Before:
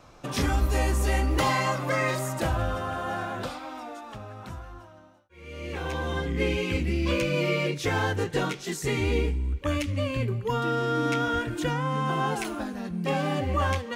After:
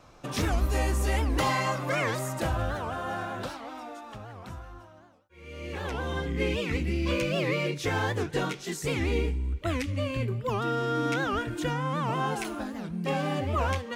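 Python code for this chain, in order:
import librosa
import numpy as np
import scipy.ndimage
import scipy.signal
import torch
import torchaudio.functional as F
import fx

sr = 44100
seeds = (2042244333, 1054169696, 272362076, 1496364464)

y = fx.record_warp(x, sr, rpm=78.0, depth_cents=250.0)
y = y * librosa.db_to_amplitude(-2.0)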